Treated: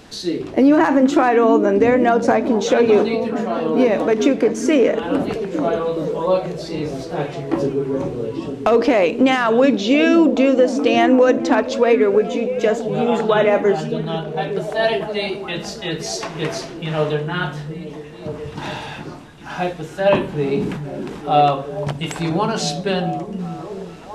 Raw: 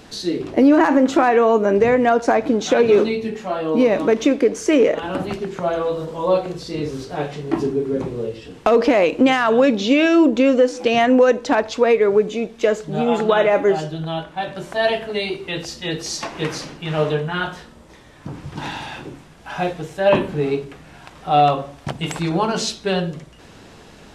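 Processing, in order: delay with a stepping band-pass 0.426 s, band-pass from 170 Hz, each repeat 0.7 oct, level -3.5 dB; 20.43–21.31 sustainer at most 43 dB/s

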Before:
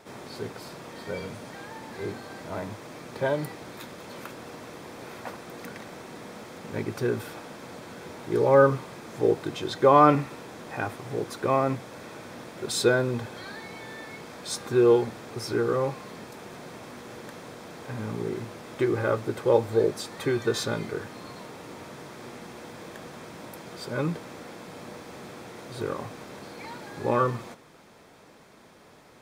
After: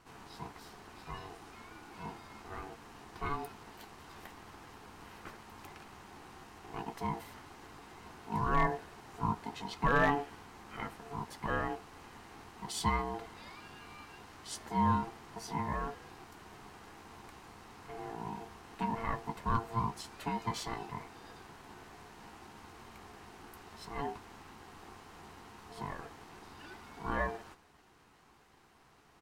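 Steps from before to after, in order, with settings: ring modulator 570 Hz; overloaded stage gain 10.5 dB; doubler 14 ms -12 dB; gain -7.5 dB

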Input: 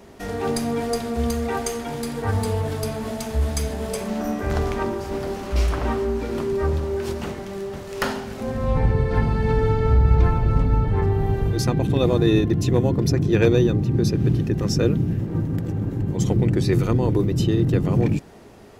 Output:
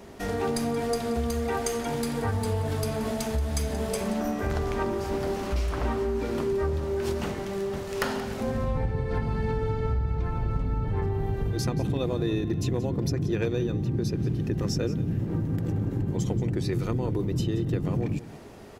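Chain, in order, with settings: compressor, threshold -24 dBFS, peak gain reduction 12.5 dB; echo 0.178 s -16 dB

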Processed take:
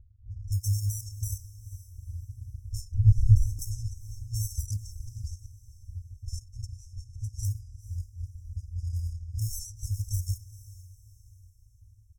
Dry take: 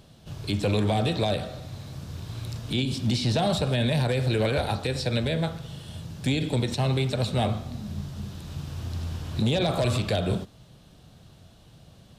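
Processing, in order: 0.66–1.25 high shelf 3200 Hz -11.5 dB; sample-and-hold 26×; FFT band-reject 110–5000 Hz; 2.94–3.59 RIAA curve playback; reverb removal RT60 1.6 s; low-pass opened by the level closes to 590 Hz, open at -30.5 dBFS; comb 2.4 ms, depth 93%; diffused feedback echo 0.464 s, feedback 42%, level -16 dB; 4.65–5.54 Doppler distortion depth 0.22 ms

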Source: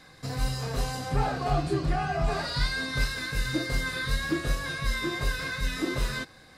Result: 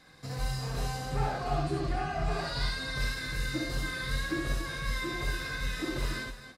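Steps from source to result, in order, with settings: loudspeakers at several distances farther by 23 m -2 dB, 97 m -10 dB; gain -6 dB

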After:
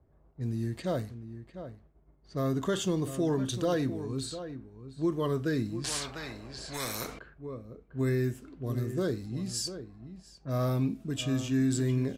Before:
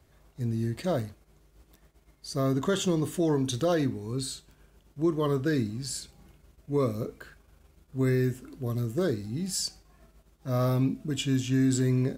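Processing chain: low-pass opened by the level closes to 800 Hz, open at -27 dBFS; outdoor echo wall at 120 m, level -11 dB; 5.84–7.19 spectral compressor 4:1; gain -3 dB

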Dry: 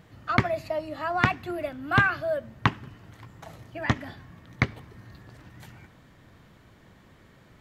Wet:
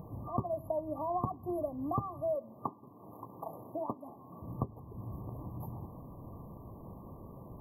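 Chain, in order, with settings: rattling part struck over -21 dBFS, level -14 dBFS; compressor 2.5:1, threshold -44 dBFS, peak gain reduction 19 dB; 2.35–4.42 HPF 260 Hz 12 dB/oct; FFT band-reject 1200–11000 Hz; gain +7 dB

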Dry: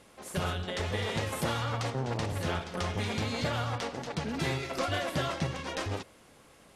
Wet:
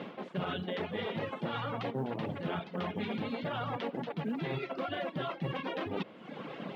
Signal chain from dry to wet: reverb removal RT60 0.76 s; Chebyshev band-pass 170–3300 Hz, order 3; low shelf 470 Hz +9.5 dB; reverse; compressor 12:1, threshold -43 dBFS, peak gain reduction 22 dB; reverse; limiter -38.5 dBFS, peak gain reduction 6 dB; in parallel at -0.5 dB: vocal rider within 5 dB 0.5 s; on the sum: short-mantissa float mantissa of 6-bit; gain +6.5 dB

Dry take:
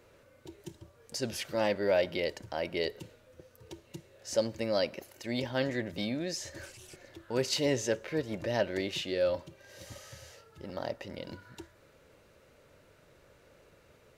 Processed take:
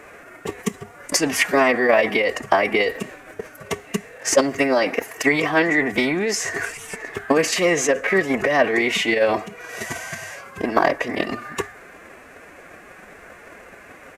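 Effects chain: downsampling 32000 Hz; formant-preserving pitch shift +3.5 st; in parallel at -2.5 dB: negative-ratio compressor -36 dBFS, ratio -0.5; on the sum: transient shaper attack +8 dB, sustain +2 dB; ten-band EQ 125 Hz -11 dB, 250 Hz +5 dB, 1000 Hz +6 dB, 2000 Hz +12 dB, 4000 Hz -9 dB, 8000 Hz +5 dB; gain +6 dB

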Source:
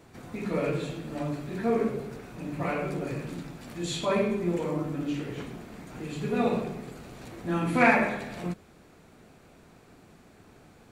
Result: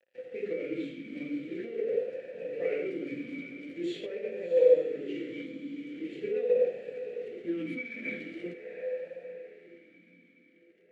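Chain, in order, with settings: notches 50/100/150/200/250/300/350 Hz; negative-ratio compressor -30 dBFS, ratio -1; small resonant body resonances 510/2300 Hz, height 15 dB, ringing for 85 ms; crossover distortion -44.5 dBFS; diffused feedback echo 0.701 s, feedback 45%, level -9 dB; vowel sweep e-i 0.44 Hz; gain +4.5 dB

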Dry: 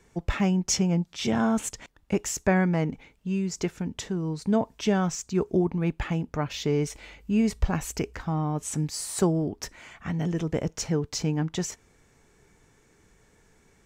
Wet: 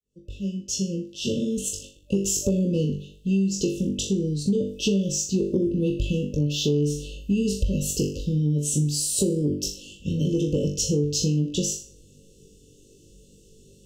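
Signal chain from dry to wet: opening faded in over 2.53 s; on a send: flutter echo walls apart 3.5 m, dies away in 0.39 s; on the sum: FFT band-reject 590–2600 Hz; in parallel at -0.5 dB: limiter -17 dBFS, peak gain reduction 8.5 dB; on the sum: compressor, threshold -19 dBFS, peak gain reduction 8.5 dB

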